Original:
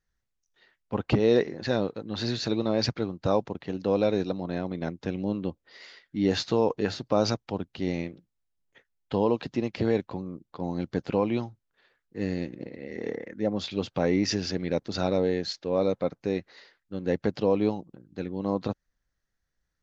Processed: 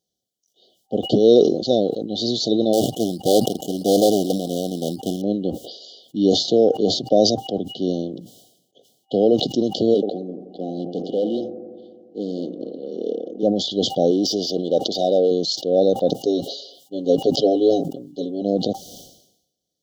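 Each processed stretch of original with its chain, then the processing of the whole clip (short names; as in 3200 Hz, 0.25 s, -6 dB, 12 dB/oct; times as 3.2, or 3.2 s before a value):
2.73–5.22 sample-rate reducer 4700 Hz + Doppler distortion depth 0.78 ms
6.33–9.32 HPF 88 Hz 24 dB/oct + high shelf 5400 Hz -6 dB
9.94–13.43 analogue delay 86 ms, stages 1024, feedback 75%, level -15 dB + hard clip -24.5 dBFS + BPF 210–4300 Hz
14.11–15.31 HPF 49 Hz + bell 240 Hz -3.5 dB 2.9 oct + overdrive pedal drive 15 dB, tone 1600 Hz, clips at -15 dBFS
16.23–18.42 HPF 270 Hz 6 dB/oct + comb 7.3 ms, depth 81%
whole clip: FFT band-reject 780–2900 Hz; HPF 230 Hz 12 dB/oct; sustainer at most 70 dB/s; gain +9 dB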